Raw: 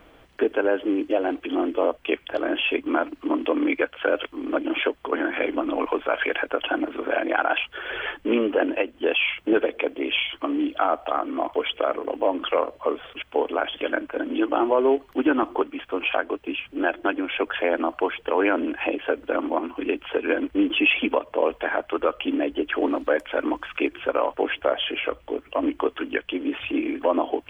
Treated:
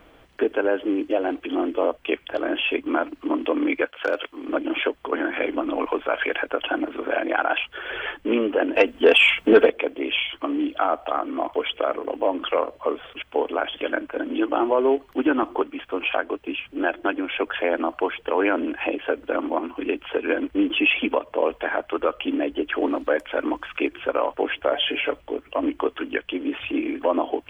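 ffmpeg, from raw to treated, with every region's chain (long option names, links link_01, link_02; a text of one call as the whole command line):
ffmpeg -i in.wav -filter_complex "[0:a]asettb=1/sr,asplit=3[link_01][link_02][link_03];[link_01]atrim=end=3.854[link_04];[link_02]atrim=start=3.85:end=4.49,asetpts=PTS-STARTPTS,afade=type=in:duration=0.004:curve=qsin,afade=type=out:start_time=0.636:duration=0.004:curve=qsin,agate=range=-33dB:threshold=-49dB:ratio=3:release=100:detection=peak,lowshelf=frequency=230:gain=-10.5,asoftclip=type=hard:threshold=-14dB[link_05];[link_03]atrim=start=4.486[link_06];[link_04][link_05]acrossfade=duration=0.004:curve1=hsin:curve2=qsin[link_07];[link_07][link_06]acrossfade=duration=0.004:curve1=qsin:curve2=hsin,asettb=1/sr,asplit=3[link_08][link_09][link_10];[link_08]atrim=end=8.754[link_11];[link_09]atrim=start=8.75:end=9.7,asetpts=PTS-STARTPTS,afade=type=in:duration=0.004:curve=qsin,afade=type=out:start_time=0.946:duration=0.004:curve=qsin,aecho=1:1:4.4:0.44,atrim=end_sample=41895,acontrast=88[link_12];[link_10]atrim=start=9.696[link_13];[link_11][link_12]acrossfade=duration=0.004:curve1=hsin:curve2=qsin[link_14];[link_14][link_13]acrossfade=duration=0.004:curve1=qsin:curve2=hsin,asettb=1/sr,asplit=3[link_15][link_16][link_17];[link_15]atrim=end=24.724[link_18];[link_16]atrim=start=24.72:end=25.21,asetpts=PTS-STARTPTS,afade=type=in:duration=0.004:curve=qsin,afade=type=out:start_time=0.486:duration=0.004:curve=qsin,bandreject=frequency=1200:width=6.1,aecho=1:1:7:1,atrim=end_sample=21609[link_19];[link_17]atrim=start=25.206[link_20];[link_18][link_19]acrossfade=duration=0.004:curve1=hsin:curve2=qsin[link_21];[link_21][link_20]acrossfade=duration=0.004:curve1=qsin:curve2=hsin" out.wav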